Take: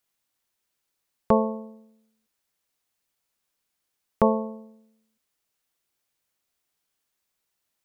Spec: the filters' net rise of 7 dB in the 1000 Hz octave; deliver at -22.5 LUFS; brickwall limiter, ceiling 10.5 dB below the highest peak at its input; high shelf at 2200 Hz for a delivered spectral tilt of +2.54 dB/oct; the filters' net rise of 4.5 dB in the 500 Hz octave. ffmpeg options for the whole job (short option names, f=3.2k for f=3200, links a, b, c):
-af "equalizer=f=500:t=o:g=3.5,equalizer=f=1k:t=o:g=8.5,highshelf=f=2.2k:g=-7.5,volume=4.5dB,alimiter=limit=-7.5dB:level=0:latency=1"